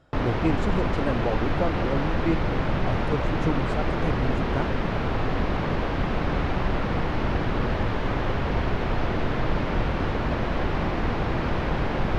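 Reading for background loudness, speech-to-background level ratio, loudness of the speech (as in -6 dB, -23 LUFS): -27.0 LUFS, -4.0 dB, -31.0 LUFS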